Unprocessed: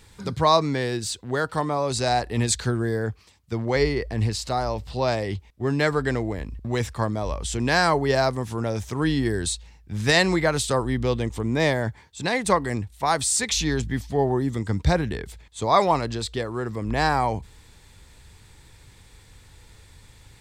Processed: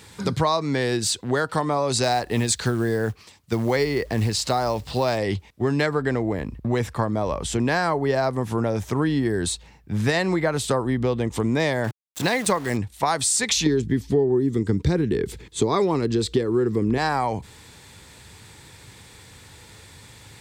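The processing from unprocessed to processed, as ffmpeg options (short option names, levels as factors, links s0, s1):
-filter_complex "[0:a]asettb=1/sr,asplit=3[s0][s1][s2];[s0]atrim=end=2.034[s3];[s1]atrim=start=2.03:end=5.18,asetpts=PTS-STARTPTS,afade=t=in:d=0.004:c=qsin,afade=t=out:st=3.146:d=0.004:c=qsin,acrusher=bits=7:mode=log:mix=0:aa=0.000001[s4];[s2]atrim=start=5.176[s5];[s3][s4]acrossfade=d=0.004:c1=hsin:c2=qsin[s6];[s6][s5]acrossfade=d=0.004:c1=qsin:c2=hsin,asettb=1/sr,asplit=3[s7][s8][s9];[s7]atrim=end=5.864[s10];[s8]atrim=start=5.86:end=11.31,asetpts=PTS-STARTPTS,afade=t=in:d=0.004:c=qsin,afade=t=out:st=5.446:d=0.004:c=qsin,equalizer=f=6100:t=o:w=2.7:g=-7.5[s11];[s9]atrim=start=11.306[s12];[s10][s11]acrossfade=d=0.004:c1=hsin:c2=qsin[s13];[s13][s12]acrossfade=d=0.004:c1=qsin:c2=hsin,asettb=1/sr,asplit=3[s14][s15][s16];[s14]atrim=end=11.844[s17];[s15]atrim=start=11.84:end=12.77,asetpts=PTS-STARTPTS,afade=t=in:d=0.004:c=qsin,afade=t=out:st=0.926:d=0.004:c=qsin,aeval=exprs='val(0)*gte(abs(val(0)),0.0188)':c=same[s18];[s16]atrim=start=12.766[s19];[s17][s18]acrossfade=d=0.004:c1=hsin:c2=qsin[s20];[s20][s19]acrossfade=d=0.004:c1=qsin:c2=hsin,asettb=1/sr,asplit=3[s21][s22][s23];[s21]atrim=end=13.664[s24];[s22]atrim=start=13.66:end=16.98,asetpts=PTS-STARTPTS,afade=t=in:d=0.004:c=qsin,afade=t=out:st=3.316:d=0.004:c=qsin,lowshelf=f=510:t=q:w=3:g=7[s25];[s23]atrim=start=16.976[s26];[s24][s25]acrossfade=d=0.004:c1=hsin:c2=qsin[s27];[s27][s26]acrossfade=d=0.004:c1=qsin:c2=hsin,highpass=110,acompressor=threshold=0.0501:ratio=6,volume=2.37"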